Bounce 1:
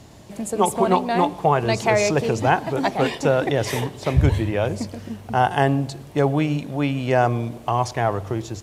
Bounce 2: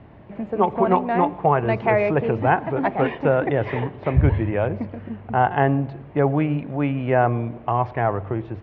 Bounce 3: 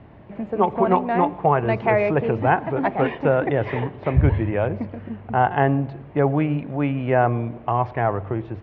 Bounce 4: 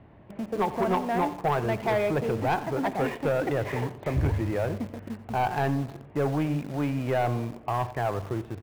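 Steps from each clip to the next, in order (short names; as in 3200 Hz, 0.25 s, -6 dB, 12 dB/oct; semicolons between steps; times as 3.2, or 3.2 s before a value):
inverse Chebyshev low-pass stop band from 9100 Hz, stop band 70 dB
nothing audible
in parallel at -9 dB: bit-crush 5-bit; on the sum: soft clip -12.5 dBFS, distortion -11 dB; echo 89 ms -16.5 dB; gain -6.5 dB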